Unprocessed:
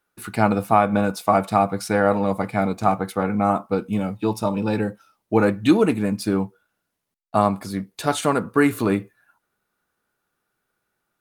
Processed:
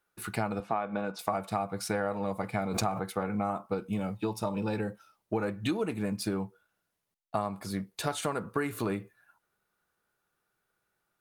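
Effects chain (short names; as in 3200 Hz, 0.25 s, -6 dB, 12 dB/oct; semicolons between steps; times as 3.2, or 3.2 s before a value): bell 260 Hz -6 dB 0.43 oct; compressor 6:1, threshold -24 dBFS, peak gain reduction 12.5 dB; 0.6–1.19 BPF 180–4200 Hz; 2.54–3.07 backwards sustainer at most 34 dB/s; gain -3.5 dB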